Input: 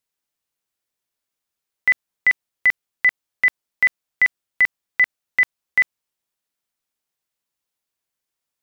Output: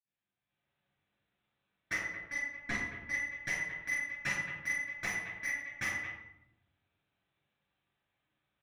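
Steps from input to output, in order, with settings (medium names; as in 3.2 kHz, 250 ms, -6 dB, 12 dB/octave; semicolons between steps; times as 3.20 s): 5.39–5.75 s: time-frequency box 680–2300 Hz -25 dB; compression 10:1, threshold -27 dBFS, peak gain reduction 14.5 dB; LPC vocoder at 8 kHz pitch kept; high-pass 50 Hz; bass shelf 82 Hz -9.5 dB; multi-tap echo 42/120/221 ms -6.5/-19/-15.5 dB; level rider gain up to 11 dB; 1.88–3.08 s: treble shelf 2.1 kHz -9 dB; saturation -21 dBFS, distortion -8 dB; reverberation RT60 0.85 s, pre-delay 51 ms; trim +6.5 dB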